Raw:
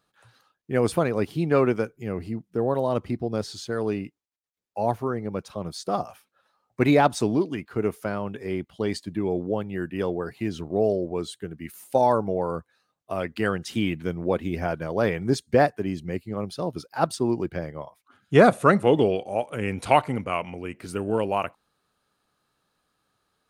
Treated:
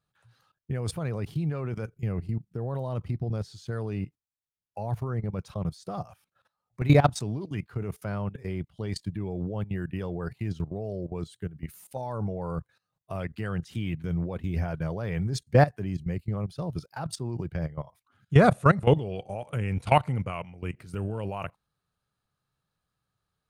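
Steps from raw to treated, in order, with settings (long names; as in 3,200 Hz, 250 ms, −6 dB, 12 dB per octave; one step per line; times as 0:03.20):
output level in coarse steps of 17 dB
low shelf with overshoot 190 Hz +9.5 dB, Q 1.5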